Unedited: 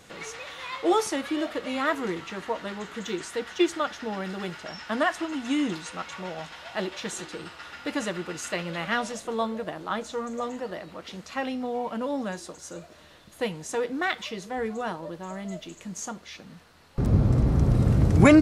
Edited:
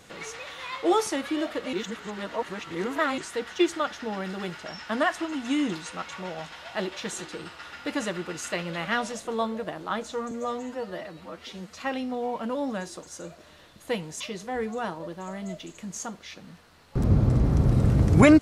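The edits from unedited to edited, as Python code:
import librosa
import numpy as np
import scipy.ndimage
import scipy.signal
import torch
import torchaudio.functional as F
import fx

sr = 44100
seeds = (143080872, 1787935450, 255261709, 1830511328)

y = fx.edit(x, sr, fx.reverse_span(start_s=1.73, length_s=1.45),
    fx.stretch_span(start_s=10.31, length_s=0.97, factor=1.5),
    fx.cut(start_s=13.72, length_s=0.51), tone=tone)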